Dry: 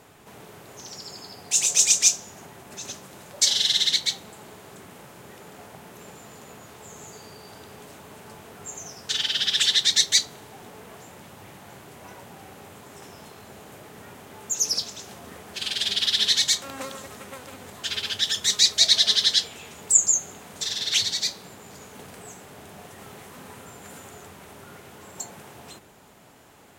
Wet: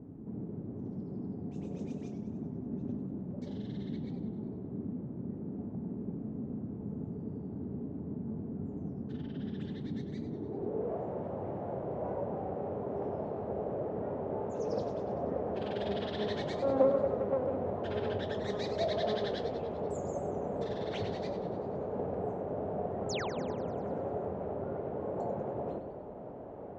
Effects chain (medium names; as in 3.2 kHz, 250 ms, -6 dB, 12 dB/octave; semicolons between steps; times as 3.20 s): low-pass sweep 250 Hz -> 580 Hz, 10.17–10.97 s; painted sound fall, 23.09–23.31 s, 450–7800 Hz -46 dBFS; modulated delay 97 ms, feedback 60%, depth 123 cents, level -10 dB; trim +6 dB